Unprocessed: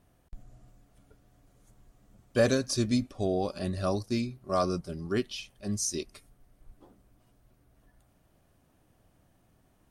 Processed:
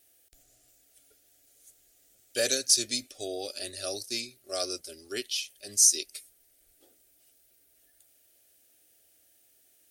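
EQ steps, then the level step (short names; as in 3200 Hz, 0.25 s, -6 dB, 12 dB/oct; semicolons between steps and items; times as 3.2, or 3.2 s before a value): tilt +4.5 dB/oct; fixed phaser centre 420 Hz, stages 4; 0.0 dB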